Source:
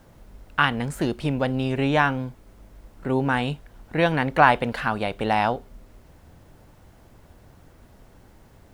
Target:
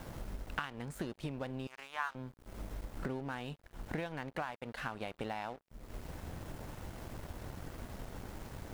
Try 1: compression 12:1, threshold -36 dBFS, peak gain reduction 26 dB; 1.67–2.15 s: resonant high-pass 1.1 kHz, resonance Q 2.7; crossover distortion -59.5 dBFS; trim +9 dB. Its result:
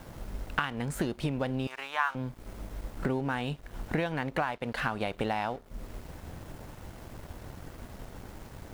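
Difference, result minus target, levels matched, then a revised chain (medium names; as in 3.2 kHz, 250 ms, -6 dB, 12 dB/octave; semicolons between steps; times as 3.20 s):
compression: peak gain reduction -8.5 dB
compression 12:1, threshold -45 dBFS, peak gain reduction 34 dB; 1.67–2.15 s: resonant high-pass 1.1 kHz, resonance Q 2.7; crossover distortion -59.5 dBFS; trim +9 dB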